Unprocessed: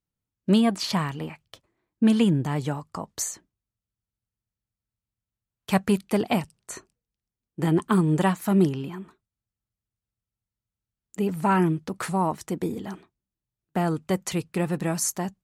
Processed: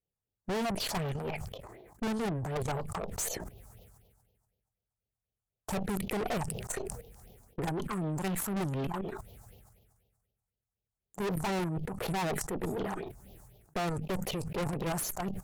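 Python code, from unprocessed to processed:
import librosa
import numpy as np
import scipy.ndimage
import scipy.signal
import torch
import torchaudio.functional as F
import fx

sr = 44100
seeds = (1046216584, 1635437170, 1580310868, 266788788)

y = fx.band_shelf(x, sr, hz=570.0, db=fx.steps((0.0, 16.0), (7.72, 8.5), (8.9, 15.0)), octaves=1.3)
y = fx.level_steps(y, sr, step_db=16)
y = fx.phaser_stages(y, sr, stages=4, low_hz=430.0, high_hz=1500.0, hz=4.0, feedback_pct=45)
y = fx.tube_stage(y, sr, drive_db=39.0, bias=0.75)
y = fx.sustainer(y, sr, db_per_s=37.0)
y = y * librosa.db_to_amplitude(8.5)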